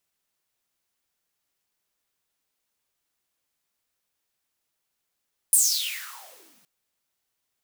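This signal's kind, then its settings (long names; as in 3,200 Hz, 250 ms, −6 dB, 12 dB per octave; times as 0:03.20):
filter sweep on noise white, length 1.12 s highpass, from 9,900 Hz, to 160 Hz, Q 8.4, exponential, gain ramp −39 dB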